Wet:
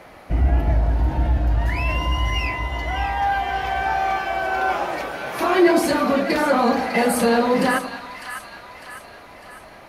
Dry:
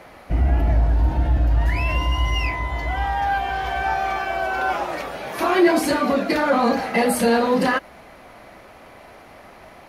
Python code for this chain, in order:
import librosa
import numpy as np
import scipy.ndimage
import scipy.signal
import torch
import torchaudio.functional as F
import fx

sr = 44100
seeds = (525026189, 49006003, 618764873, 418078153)

y = fx.echo_split(x, sr, split_hz=1000.0, low_ms=97, high_ms=602, feedback_pct=52, wet_db=-9.5)